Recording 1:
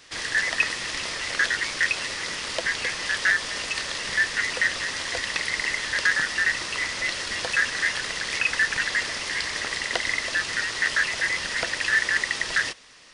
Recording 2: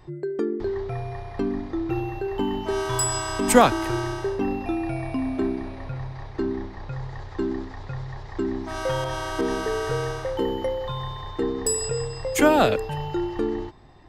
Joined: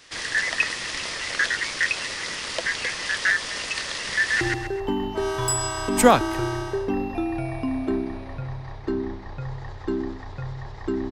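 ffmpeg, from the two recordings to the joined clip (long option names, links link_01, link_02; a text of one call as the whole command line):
ffmpeg -i cue0.wav -i cue1.wav -filter_complex "[0:a]apad=whole_dur=11.11,atrim=end=11.11,atrim=end=4.412[link_01];[1:a]atrim=start=1.918:end=8.62[link_02];[link_01][link_02]acrossfade=duration=0.004:curve1=hsin:curve2=hsin,asplit=2[link_03][link_04];[link_04]afade=type=in:start_time=4.15:duration=0.01,afade=type=out:start_time=4.41:duration=0.01,aecho=0:1:130|260|390|520|650:0.749894|0.262463|0.091862|0.0321517|0.0112531[link_05];[link_03][link_05]amix=inputs=2:normalize=0" out.wav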